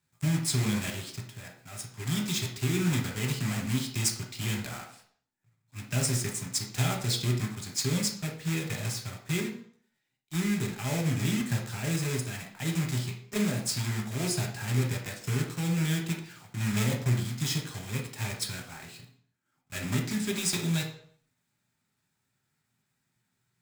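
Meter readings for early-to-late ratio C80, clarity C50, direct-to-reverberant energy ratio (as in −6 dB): 12.5 dB, 7.5 dB, 1.0 dB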